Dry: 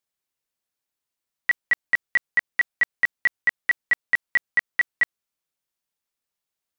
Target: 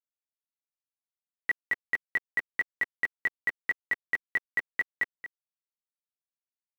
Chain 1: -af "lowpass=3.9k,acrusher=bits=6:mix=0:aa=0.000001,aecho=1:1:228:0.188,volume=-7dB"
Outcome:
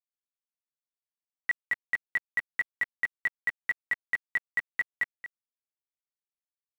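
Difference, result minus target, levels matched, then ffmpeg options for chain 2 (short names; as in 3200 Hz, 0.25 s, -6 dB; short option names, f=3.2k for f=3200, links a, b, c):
500 Hz band -5.5 dB
-af "lowpass=3.9k,equalizer=f=370:w=1.1:g=9,acrusher=bits=6:mix=0:aa=0.000001,aecho=1:1:228:0.188,volume=-7dB"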